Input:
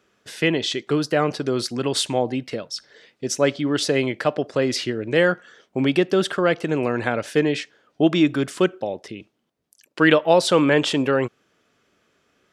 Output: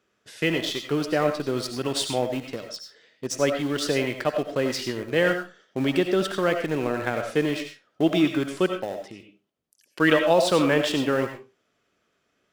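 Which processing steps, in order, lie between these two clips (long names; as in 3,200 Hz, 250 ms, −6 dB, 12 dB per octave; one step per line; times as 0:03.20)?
in parallel at −6 dB: centre clipping without the shift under −22.5 dBFS
on the sum: convolution reverb RT60 0.30 s, pre-delay 50 ms, DRR 5 dB
level −7.5 dB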